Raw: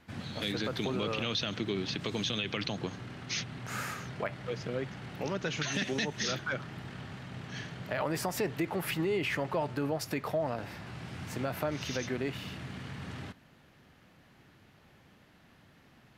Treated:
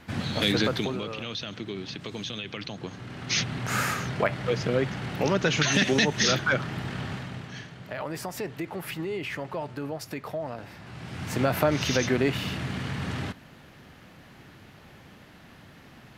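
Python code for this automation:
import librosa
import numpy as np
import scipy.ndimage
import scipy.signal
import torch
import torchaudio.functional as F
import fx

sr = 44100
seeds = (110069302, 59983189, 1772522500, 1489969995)

y = fx.gain(x, sr, db=fx.line((0.63, 10.0), (1.08, -2.0), (2.77, -2.0), (3.43, 10.0), (7.13, 10.0), (7.67, -1.5), (10.77, -1.5), (11.44, 10.0)))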